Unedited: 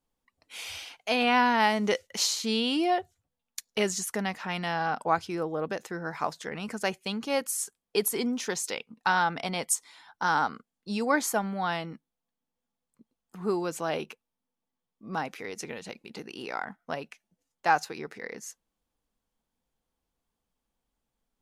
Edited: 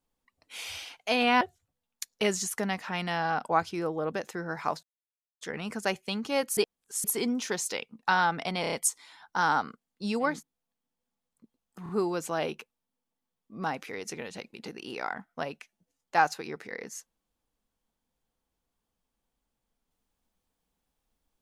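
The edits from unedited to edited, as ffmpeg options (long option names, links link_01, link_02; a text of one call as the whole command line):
ffmpeg -i in.wav -filter_complex "[0:a]asplit=12[link_01][link_02][link_03][link_04][link_05][link_06][link_07][link_08][link_09][link_10][link_11][link_12];[link_01]atrim=end=1.412[link_13];[link_02]atrim=start=2.968:end=6.39,asetpts=PTS-STARTPTS,afade=type=out:start_time=3.418:duration=0.004:curve=hsin,apad=pad_dur=0.58[link_14];[link_03]atrim=start=6.39:end=7.552,asetpts=PTS-STARTPTS,afade=type=in:duration=0.004:curve=hsin[link_15];[link_04]atrim=start=7.548:end=8.022,asetpts=PTS-STARTPTS,areverse[link_16];[link_05]atrim=start=8.018:end=9.622[link_17];[link_06]atrim=start=9.588:end=9.622[link_18];[link_07]atrim=start=9.588:end=9.622[link_19];[link_08]atrim=start=9.588:end=9.622[link_20];[link_09]atrim=start=9.588:end=11.29[link_21];[link_10]atrim=start=11.76:end=13.432[link_22];[link_11]atrim=start=13.398:end=13.432[link_23];[link_12]atrim=start=13.398[link_24];[link_14][link_15]concat=n=2:v=0:a=1[link_25];[link_13][link_25]acrossfade=duration=0.004:curve1=hsin:curve2=hsin[link_26];[link_26][link_16]acrossfade=duration=0.004:curve1=hsin:curve2=hsin[link_27];[link_27][link_17]acrossfade=duration=0.004:curve1=hsin:curve2=hsin[link_28];[link_28][link_18]acrossfade=duration=0.004:curve1=hsin:curve2=hsin[link_29];[link_29][link_19]acrossfade=duration=0.004:curve1=hsin:curve2=hsin[link_30];[link_30][link_20]acrossfade=duration=0.004:curve1=hsin:curve2=hsin[link_31];[link_31][link_21]acrossfade=duration=0.004:curve1=hsin:curve2=hsin[link_32];[link_32][link_22]acrossfade=duration=0.24:curve1=tri:curve2=tri[link_33];[link_33][link_23]acrossfade=duration=0.004:curve1=hsin:curve2=hsin[link_34];[link_34][link_24]acrossfade=duration=0.004:curve1=hsin:curve2=hsin" out.wav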